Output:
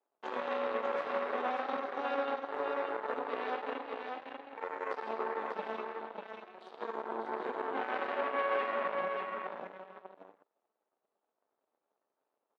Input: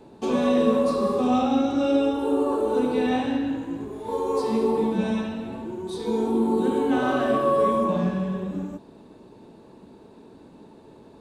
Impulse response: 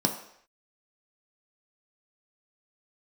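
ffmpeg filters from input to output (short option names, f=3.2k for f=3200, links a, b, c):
-af "aeval=exprs='0.398*(cos(1*acos(clip(val(0)/0.398,-1,1)))-cos(1*PI/2))+0.02*(cos(6*acos(clip(val(0)/0.398,-1,1)))-cos(6*PI/2))+0.0562*(cos(7*acos(clip(val(0)/0.398,-1,1)))-cos(7*PI/2))':c=same,acompressor=threshold=-36dB:ratio=2,atempo=0.89,asuperpass=centerf=1200:order=4:qfactor=0.52,aecho=1:1:592:0.631,volume=1.5dB"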